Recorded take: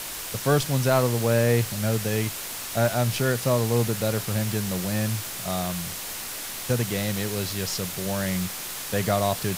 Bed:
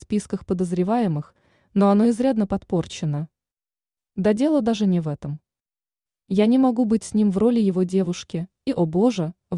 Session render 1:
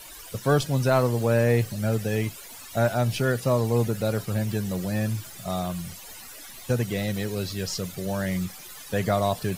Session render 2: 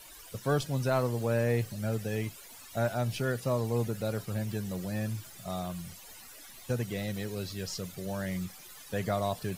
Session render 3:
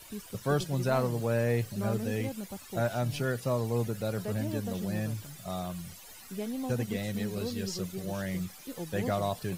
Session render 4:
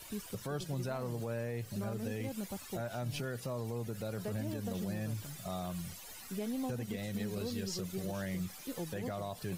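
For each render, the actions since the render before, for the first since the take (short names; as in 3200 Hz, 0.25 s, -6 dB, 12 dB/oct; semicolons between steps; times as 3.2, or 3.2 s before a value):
denoiser 15 dB, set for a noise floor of -35 dBFS
gain -7 dB
add bed -18.5 dB
compressor 4:1, threshold -33 dBFS, peak gain reduction 9.5 dB; limiter -28.5 dBFS, peak gain reduction 6 dB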